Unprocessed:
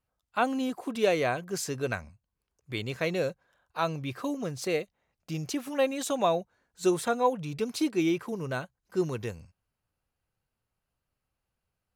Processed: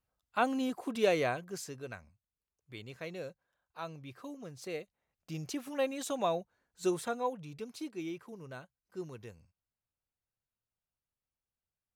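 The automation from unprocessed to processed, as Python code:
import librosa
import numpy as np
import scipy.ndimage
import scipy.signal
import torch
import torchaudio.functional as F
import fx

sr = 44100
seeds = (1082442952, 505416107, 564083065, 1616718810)

y = fx.gain(x, sr, db=fx.line((1.2, -3.0), (1.85, -13.0), (4.42, -13.0), (5.4, -6.0), (6.89, -6.0), (7.82, -13.5)))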